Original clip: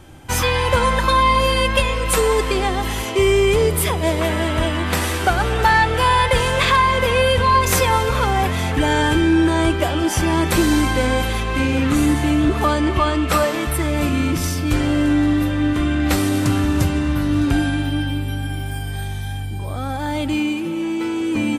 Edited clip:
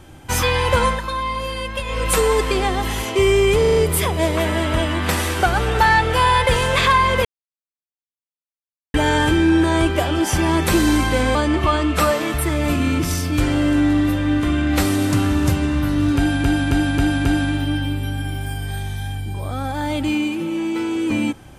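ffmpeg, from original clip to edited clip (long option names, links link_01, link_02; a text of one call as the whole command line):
ffmpeg -i in.wav -filter_complex "[0:a]asplit=14[link_01][link_02][link_03][link_04][link_05][link_06][link_07][link_08][link_09][link_10][link_11][link_12][link_13][link_14];[link_01]atrim=end=1.01,asetpts=PTS-STARTPTS,afade=type=out:start_time=0.86:duration=0.15:silence=0.354813[link_15];[link_02]atrim=start=1.01:end=1.85,asetpts=PTS-STARTPTS,volume=-9dB[link_16];[link_03]atrim=start=1.85:end=3.642,asetpts=PTS-STARTPTS,afade=type=in:duration=0.15:silence=0.354813[link_17];[link_04]atrim=start=3.598:end=3.642[link_18];[link_05]atrim=start=3.598:end=3.642[link_19];[link_06]atrim=start=3.598:end=3.642[link_20];[link_07]atrim=start=3.598:end=7.09,asetpts=PTS-STARTPTS,afade=type=out:start_time=3.488:duration=0.004:curve=hsin[link_21];[link_08]atrim=start=7.09:end=8.78,asetpts=PTS-STARTPTS,volume=0[link_22];[link_09]atrim=start=8.78:end=11.192,asetpts=PTS-STARTPTS,afade=type=in:duration=0.004:curve=hsin[link_23];[link_10]atrim=start=12.678:end=17.772[link_24];[link_11]atrim=start=17.498:end=17.772[link_25];[link_12]atrim=start=17.498:end=17.772[link_26];[link_13]atrim=start=17.498:end=17.772[link_27];[link_14]atrim=start=17.498[link_28];[link_15][link_16][link_17]concat=n=3:v=0:a=1[link_29];[link_29][link_18]acrossfade=duration=0.004:curve1=hsin:curve2=hsin[link_30];[link_30][link_19]acrossfade=duration=0.004:curve1=hsin:curve2=hsin[link_31];[link_31][link_20]acrossfade=duration=0.004:curve1=hsin:curve2=hsin[link_32];[link_21][link_22][link_23]concat=n=3:v=0:a=1[link_33];[link_32][link_33]acrossfade=duration=0.004:curve1=hsin:curve2=hsin[link_34];[link_34][link_24]acrossfade=duration=0.004:curve1=hsin:curve2=hsin[link_35];[link_35][link_25]acrossfade=duration=0.004:curve1=hsin:curve2=hsin[link_36];[link_36][link_26]acrossfade=duration=0.004:curve1=hsin:curve2=hsin[link_37];[link_37][link_27]acrossfade=duration=0.004:curve1=hsin:curve2=hsin[link_38];[link_38][link_28]acrossfade=duration=0.004:curve1=hsin:curve2=hsin" out.wav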